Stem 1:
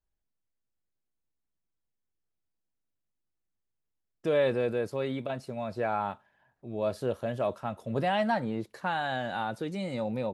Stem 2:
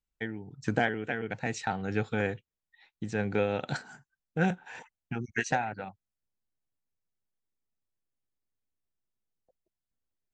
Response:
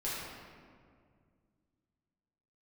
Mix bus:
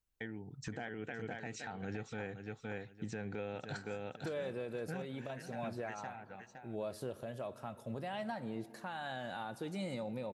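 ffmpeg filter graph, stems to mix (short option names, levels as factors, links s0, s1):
-filter_complex "[0:a]acompressor=threshold=0.0355:ratio=6,crystalizer=i=1:c=0,volume=0.501,asplit=3[s0][s1][s2];[s1]volume=0.112[s3];[1:a]volume=0.891,asplit=2[s4][s5];[s5]volume=0.335[s6];[s2]apad=whole_len=455650[s7];[s4][s7]sidechaincompress=threshold=0.00126:ratio=6:attack=8.8:release=909[s8];[2:a]atrim=start_sample=2205[s9];[s3][s9]afir=irnorm=-1:irlink=0[s10];[s6]aecho=0:1:514|1028|1542:1|0.17|0.0289[s11];[s0][s8][s10][s11]amix=inputs=4:normalize=0,alimiter=level_in=2.24:limit=0.0631:level=0:latency=1:release=387,volume=0.447"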